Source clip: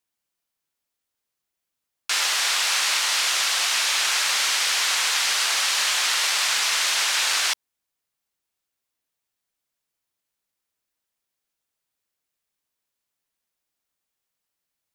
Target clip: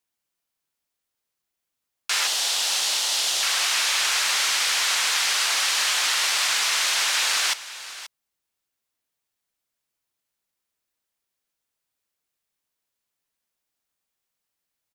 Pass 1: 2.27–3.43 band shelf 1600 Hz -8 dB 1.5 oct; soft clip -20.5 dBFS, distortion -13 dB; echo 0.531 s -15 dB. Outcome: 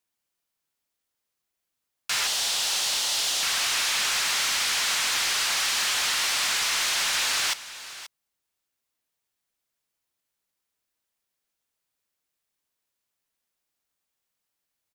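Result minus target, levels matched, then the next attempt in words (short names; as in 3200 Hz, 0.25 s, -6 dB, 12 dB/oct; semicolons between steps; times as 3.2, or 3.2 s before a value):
soft clip: distortion +16 dB
2.27–3.43 band shelf 1600 Hz -8 dB 1.5 oct; soft clip -9.5 dBFS, distortion -29 dB; echo 0.531 s -15 dB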